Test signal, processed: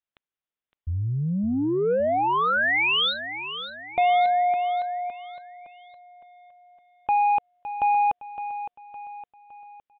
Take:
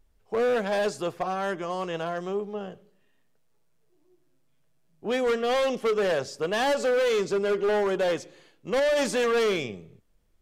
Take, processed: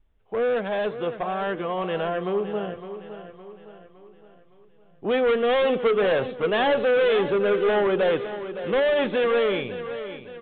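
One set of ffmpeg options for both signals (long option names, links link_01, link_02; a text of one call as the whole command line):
ffmpeg -i in.wav -af "adynamicequalizer=threshold=0.0126:dfrequency=480:dqfactor=6.3:tfrequency=480:tqfactor=6.3:attack=5:release=100:ratio=0.375:range=1.5:mode=boostabove:tftype=bell,dynaudnorm=framelen=300:gausssize=11:maxgain=6dB,asoftclip=type=tanh:threshold=-17.5dB,aecho=1:1:562|1124|1686|2248|2810:0.266|0.122|0.0563|0.0259|0.0119,aresample=8000,aresample=44100" out.wav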